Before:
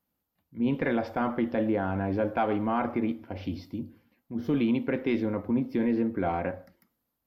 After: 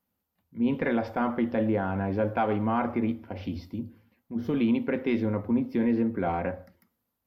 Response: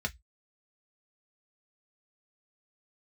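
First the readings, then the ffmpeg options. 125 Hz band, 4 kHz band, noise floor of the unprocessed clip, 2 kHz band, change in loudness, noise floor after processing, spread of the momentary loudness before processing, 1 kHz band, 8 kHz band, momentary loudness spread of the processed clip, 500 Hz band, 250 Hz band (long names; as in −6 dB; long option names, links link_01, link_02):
+1.5 dB, −0.5 dB, −82 dBFS, +0.5 dB, +1.0 dB, −81 dBFS, 10 LU, +0.5 dB, can't be measured, 11 LU, +0.5 dB, +1.0 dB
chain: -filter_complex "[0:a]asplit=2[link_01][link_02];[link_02]lowshelf=frequency=190:gain=11[link_03];[1:a]atrim=start_sample=2205,asetrate=66150,aresample=44100[link_04];[link_03][link_04]afir=irnorm=-1:irlink=0,volume=-18dB[link_05];[link_01][link_05]amix=inputs=2:normalize=0"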